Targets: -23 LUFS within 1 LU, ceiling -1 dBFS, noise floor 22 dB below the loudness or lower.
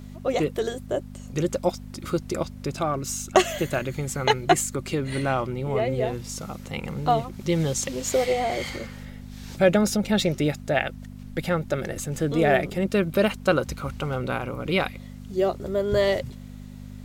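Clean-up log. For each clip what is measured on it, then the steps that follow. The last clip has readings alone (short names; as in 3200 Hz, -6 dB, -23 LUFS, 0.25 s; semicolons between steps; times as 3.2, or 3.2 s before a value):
hum 50 Hz; harmonics up to 250 Hz; hum level -38 dBFS; loudness -25.5 LUFS; peak -4.5 dBFS; loudness target -23.0 LUFS
-> de-hum 50 Hz, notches 5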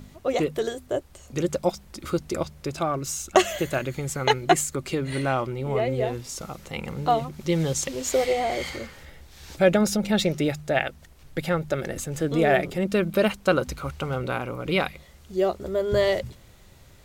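hum none; loudness -25.5 LUFS; peak -4.5 dBFS; loudness target -23.0 LUFS
-> gain +2.5 dB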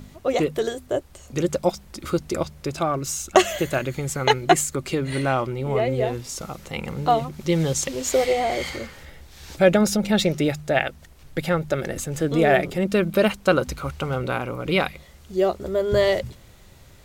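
loudness -23.0 LUFS; peak -2.0 dBFS; noise floor -48 dBFS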